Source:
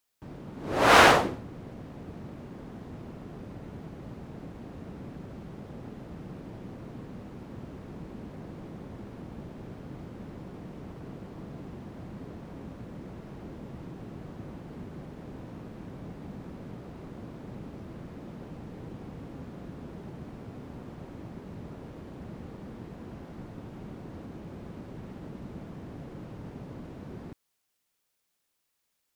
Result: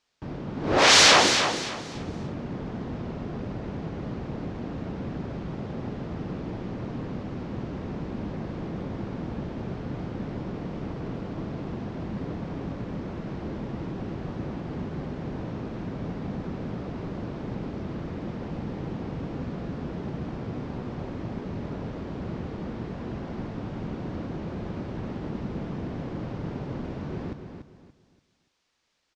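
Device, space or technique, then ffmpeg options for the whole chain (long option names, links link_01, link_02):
synthesiser wavefolder: -filter_complex "[0:a]aeval=exprs='0.1*(abs(mod(val(0)/0.1+3,4)-2)-1)':channel_layout=same,lowpass=frequency=6000:width=0.5412,lowpass=frequency=6000:width=1.3066,asettb=1/sr,asplit=3[link_01][link_02][link_03];[link_01]atrim=end=0.784[link_04];[link_02]atrim=start=0.78:end=1.95,asetpts=PTS-STARTPTS,afade=type=in:duration=0.004:curve=qsin,afade=type=out:start_time=1.166:duration=0.004:curve=qsin,aemphasis=mode=production:type=bsi[link_05];[link_03]atrim=start=1.946[link_06];[link_04][link_05]acrossfade=duration=0.004:curve1=hsin:curve2=qsin[link_07];[link_07][link_06]acrossfade=duration=0.004:curve1=qsin:curve2=hsin,aecho=1:1:288|576|864|1152:0.422|0.122|0.0355|0.0103,volume=8dB"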